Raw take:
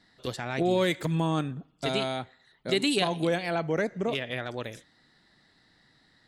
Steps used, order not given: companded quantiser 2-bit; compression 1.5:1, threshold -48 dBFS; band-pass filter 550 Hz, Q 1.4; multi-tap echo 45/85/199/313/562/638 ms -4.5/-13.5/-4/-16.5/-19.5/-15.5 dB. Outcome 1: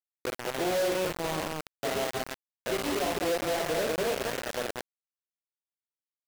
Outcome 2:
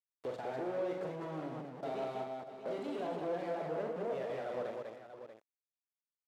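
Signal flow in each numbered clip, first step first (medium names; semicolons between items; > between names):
multi-tap echo > compression > band-pass filter > companded quantiser; companded quantiser > multi-tap echo > compression > band-pass filter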